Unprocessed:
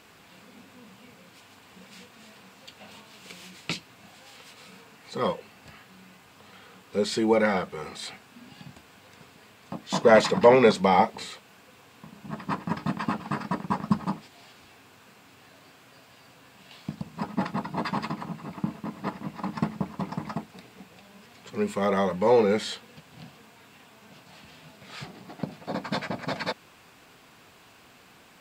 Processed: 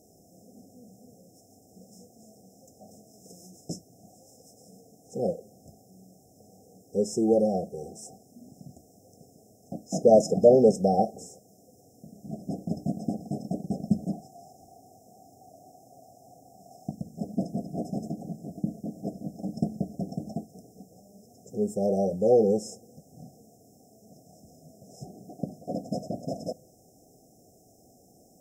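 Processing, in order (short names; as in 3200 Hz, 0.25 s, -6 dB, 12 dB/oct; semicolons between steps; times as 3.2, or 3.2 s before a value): brick-wall FIR band-stop 790–5100 Hz; 14.13–16.91 band shelf 910 Hz +12 dB 1 oct; on a send: reverb RT60 0.85 s, pre-delay 3 ms, DRR 23.5 dB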